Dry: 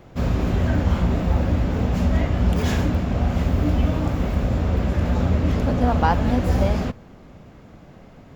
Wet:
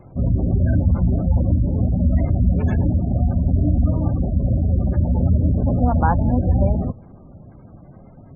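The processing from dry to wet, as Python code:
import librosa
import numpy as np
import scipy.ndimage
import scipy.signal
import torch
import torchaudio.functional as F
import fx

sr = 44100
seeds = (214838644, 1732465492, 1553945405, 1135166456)

y = fx.notch(x, sr, hz=460.0, q=12.0)
y = fx.spec_gate(y, sr, threshold_db=-20, keep='strong')
y = fx.peak_eq(y, sr, hz=110.0, db=5.5, octaves=1.2)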